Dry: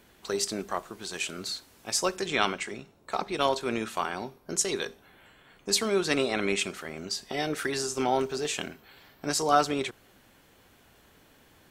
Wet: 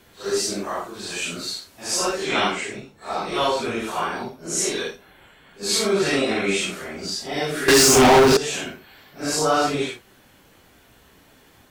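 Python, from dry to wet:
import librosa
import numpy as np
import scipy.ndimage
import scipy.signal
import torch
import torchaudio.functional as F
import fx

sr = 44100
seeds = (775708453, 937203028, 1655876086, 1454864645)

y = fx.phase_scramble(x, sr, seeds[0], window_ms=200)
y = fx.leveller(y, sr, passes=5, at=(7.68, 8.37))
y = y * librosa.db_to_amplitude(5.5)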